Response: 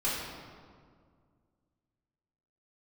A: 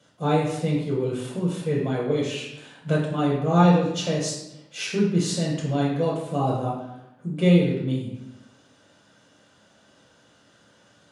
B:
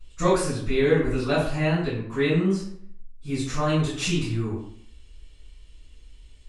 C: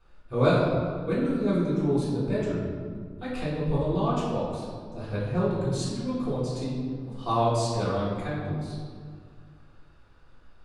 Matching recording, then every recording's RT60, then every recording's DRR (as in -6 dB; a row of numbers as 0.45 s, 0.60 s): C; 0.90 s, 0.60 s, 2.0 s; -5.5 dB, -13.5 dB, -10.0 dB